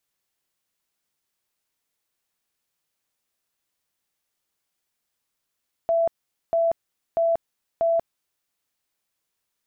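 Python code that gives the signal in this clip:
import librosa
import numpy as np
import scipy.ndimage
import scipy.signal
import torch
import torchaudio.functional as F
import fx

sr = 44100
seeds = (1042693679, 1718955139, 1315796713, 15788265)

y = fx.tone_burst(sr, hz=667.0, cycles=124, every_s=0.64, bursts=4, level_db=-17.5)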